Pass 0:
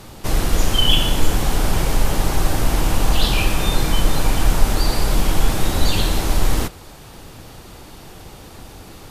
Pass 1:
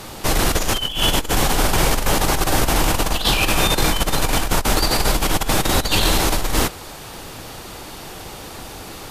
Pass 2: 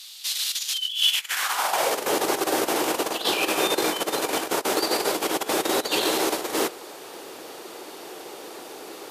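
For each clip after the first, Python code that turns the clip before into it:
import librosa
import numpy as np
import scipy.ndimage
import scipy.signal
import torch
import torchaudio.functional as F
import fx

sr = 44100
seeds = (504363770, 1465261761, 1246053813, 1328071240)

y1 = fx.low_shelf(x, sr, hz=280.0, db=-8.0)
y1 = fx.over_compress(y1, sr, threshold_db=-22.0, ratio=-0.5)
y1 = y1 * librosa.db_to_amplitude(5.5)
y2 = fx.filter_sweep_highpass(y1, sr, from_hz=3700.0, to_hz=380.0, start_s=1.0, end_s=2.03, q=2.4)
y2 = y2 * librosa.db_to_amplitude(-6.0)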